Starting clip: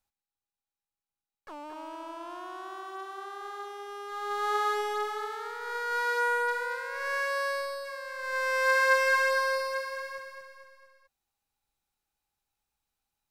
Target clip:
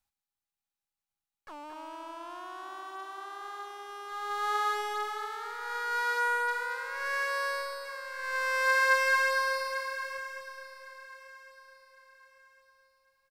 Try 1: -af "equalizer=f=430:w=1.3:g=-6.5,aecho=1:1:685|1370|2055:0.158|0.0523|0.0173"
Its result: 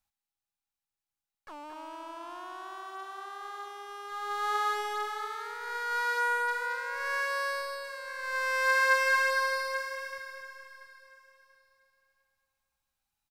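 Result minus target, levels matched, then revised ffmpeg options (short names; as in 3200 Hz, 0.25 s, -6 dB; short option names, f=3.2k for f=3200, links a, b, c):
echo 0.42 s early
-af "equalizer=f=430:w=1.3:g=-6.5,aecho=1:1:1105|2210|3315:0.158|0.0523|0.0173"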